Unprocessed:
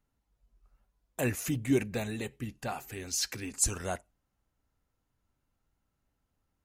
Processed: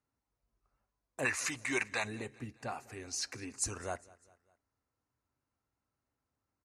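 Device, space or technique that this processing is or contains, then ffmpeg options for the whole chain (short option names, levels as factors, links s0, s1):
car door speaker: -filter_complex "[0:a]asplit=3[s0][s1][s2];[s0]afade=t=out:st=1.24:d=0.02[s3];[s1]equalizer=f=125:t=o:w=1:g=-11,equalizer=f=250:t=o:w=1:g=-7,equalizer=f=500:t=o:w=1:g=-4,equalizer=f=1000:t=o:w=1:g=11,equalizer=f=2000:t=o:w=1:g=9,equalizer=f=4000:t=o:w=1:g=9,equalizer=f=8000:t=o:w=1:g=8,afade=t=in:st=1.24:d=0.02,afade=t=out:st=2.03:d=0.02[s4];[s2]afade=t=in:st=2.03:d=0.02[s5];[s3][s4][s5]amix=inputs=3:normalize=0,highpass=89,equalizer=f=180:t=q:w=4:g=-8,equalizer=f=1100:t=q:w=4:g=3,equalizer=f=3300:t=q:w=4:g=-10,equalizer=f=7400:t=q:w=4:g=-4,lowpass=f=9400:w=0.5412,lowpass=f=9400:w=1.3066,aecho=1:1:201|402|603:0.075|0.0375|0.0187,volume=0.631"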